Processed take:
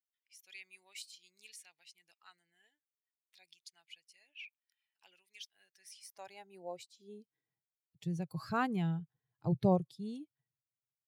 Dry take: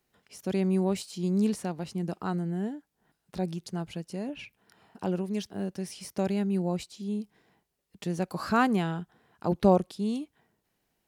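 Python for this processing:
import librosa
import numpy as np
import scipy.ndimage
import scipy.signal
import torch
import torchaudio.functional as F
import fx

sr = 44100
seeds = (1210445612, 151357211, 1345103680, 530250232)

y = fx.bin_expand(x, sr, power=1.5)
y = fx.low_shelf_res(y, sr, hz=160.0, db=9.0, q=3.0)
y = fx.filter_sweep_highpass(y, sr, from_hz=2300.0, to_hz=160.0, start_s=5.53, end_s=7.74, q=2.1)
y = y * 10.0 ** (-7.5 / 20.0)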